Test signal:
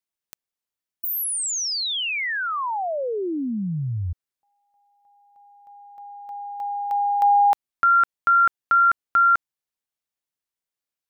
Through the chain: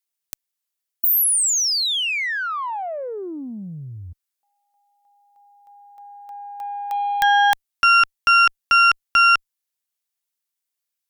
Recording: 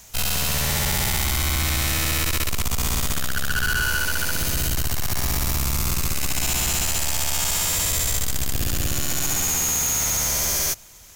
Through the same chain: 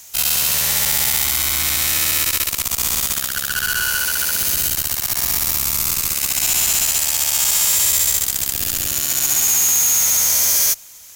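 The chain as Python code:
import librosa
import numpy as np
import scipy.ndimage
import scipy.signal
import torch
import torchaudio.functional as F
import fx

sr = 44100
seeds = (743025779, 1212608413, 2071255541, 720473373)

y = fx.cheby_harmonics(x, sr, harmonics=(2, 4, 7), levels_db=(-6, -16, -36), full_scale_db=-12.5)
y = fx.tilt_eq(y, sr, slope=2.5)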